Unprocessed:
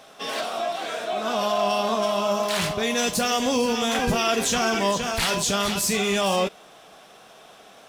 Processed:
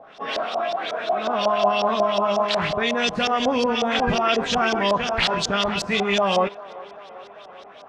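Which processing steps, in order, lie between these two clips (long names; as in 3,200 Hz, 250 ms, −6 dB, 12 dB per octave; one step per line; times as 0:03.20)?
auto-filter low-pass saw up 5.5 Hz 620–5,300 Hz
delay with a band-pass on its return 393 ms, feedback 67%, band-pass 710 Hz, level −18 dB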